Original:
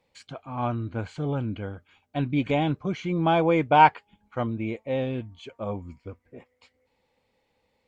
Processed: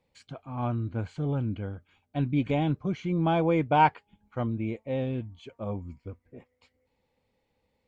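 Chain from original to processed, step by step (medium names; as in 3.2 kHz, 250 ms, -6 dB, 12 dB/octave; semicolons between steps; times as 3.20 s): bass shelf 330 Hz +7.5 dB; trim -6 dB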